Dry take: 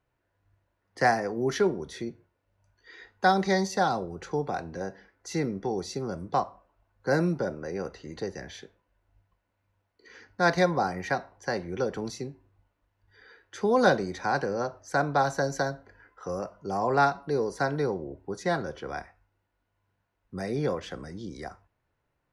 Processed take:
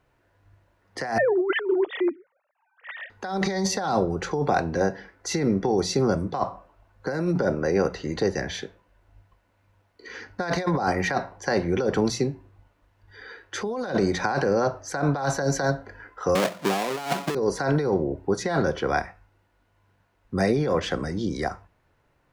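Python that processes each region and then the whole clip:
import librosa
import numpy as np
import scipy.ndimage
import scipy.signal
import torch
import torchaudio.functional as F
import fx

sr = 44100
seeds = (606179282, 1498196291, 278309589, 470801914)

y = fx.chain(x, sr, fx.sine_speech(),
    fx.over_compress(threshold_db=-33.0, ratio=-1.0), at=(1.18, 3.1))
y = fx.chain(y, sr, fx.halfwave_hold(),
    fx.highpass(hz=160.0, slope=24), at=(16.35, 17.35))
y = fx.high_shelf(y, sr, hz=9200.0, db=-6.5)
y = fx.hum_notches(y, sr, base_hz=60, count=3)
y = fx.over_compress(y, sr, threshold_db=-31.0, ratio=-1.0)
y = y * librosa.db_to_amplitude(7.5)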